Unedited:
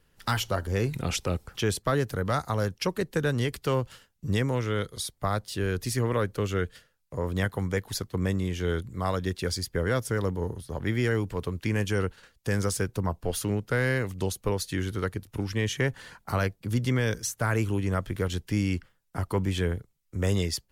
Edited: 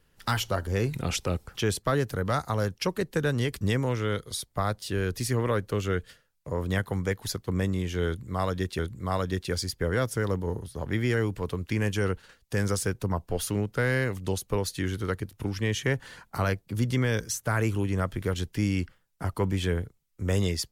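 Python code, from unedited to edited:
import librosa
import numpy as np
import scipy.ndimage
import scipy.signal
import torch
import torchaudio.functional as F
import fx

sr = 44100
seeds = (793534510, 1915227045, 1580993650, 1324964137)

y = fx.edit(x, sr, fx.cut(start_s=3.61, length_s=0.66),
    fx.repeat(start_s=8.73, length_s=0.72, count=2), tone=tone)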